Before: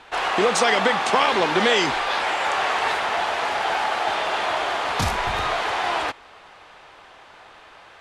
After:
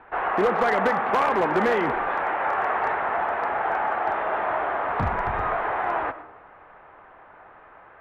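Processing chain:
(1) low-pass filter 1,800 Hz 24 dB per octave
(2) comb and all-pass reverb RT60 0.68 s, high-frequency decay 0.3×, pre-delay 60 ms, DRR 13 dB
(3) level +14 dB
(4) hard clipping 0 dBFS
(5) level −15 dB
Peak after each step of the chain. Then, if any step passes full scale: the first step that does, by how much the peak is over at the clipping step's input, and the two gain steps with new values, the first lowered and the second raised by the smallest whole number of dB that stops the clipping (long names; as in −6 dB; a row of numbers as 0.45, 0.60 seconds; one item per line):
−5.0, −5.0, +9.0, 0.0, −15.0 dBFS
step 3, 9.0 dB
step 3 +5 dB, step 5 −6 dB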